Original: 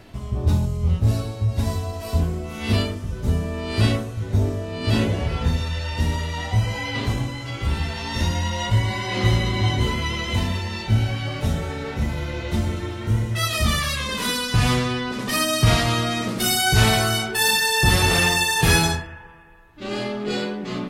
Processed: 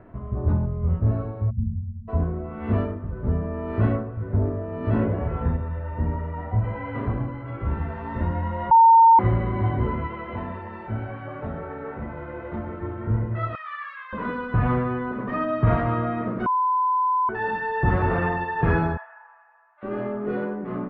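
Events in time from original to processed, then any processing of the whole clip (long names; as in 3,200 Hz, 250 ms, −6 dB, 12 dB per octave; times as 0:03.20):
0:01.50–0:02.08: time-frequency box erased 250–5,900 Hz
0:05.56–0:06.64: head-to-tape spacing loss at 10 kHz 21 dB
0:08.71–0:09.19: beep over 911 Hz −8.5 dBFS
0:10.07–0:12.81: low-shelf EQ 210 Hz −11.5 dB
0:13.55–0:14.13: high-pass filter 1,300 Hz 24 dB per octave
0:16.46–0:17.29: beep over 1,010 Hz −18 dBFS
0:18.97–0:19.83: elliptic high-pass filter 690 Hz, stop band 70 dB
whole clip: low-pass filter 1,500 Hz 24 dB per octave; low-shelf EQ 180 Hz −3.5 dB; notch filter 810 Hz, Q 12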